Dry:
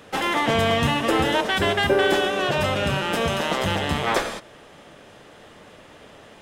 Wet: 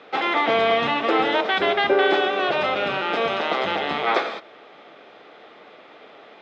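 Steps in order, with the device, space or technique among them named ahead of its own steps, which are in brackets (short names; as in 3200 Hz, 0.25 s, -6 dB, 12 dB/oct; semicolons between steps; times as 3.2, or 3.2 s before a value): phone earpiece (speaker cabinet 480–3500 Hz, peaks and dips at 560 Hz -6 dB, 980 Hz -8 dB, 1700 Hz -9 dB, 2900 Hz -9 dB); gain +7 dB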